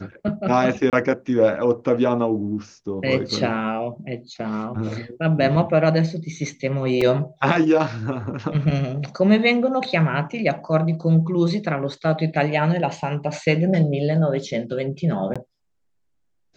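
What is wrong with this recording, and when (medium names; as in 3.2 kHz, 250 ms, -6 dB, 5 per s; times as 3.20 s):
0.90–0.93 s: dropout 28 ms
7.01 s: dropout 4 ms
15.34–15.36 s: dropout 16 ms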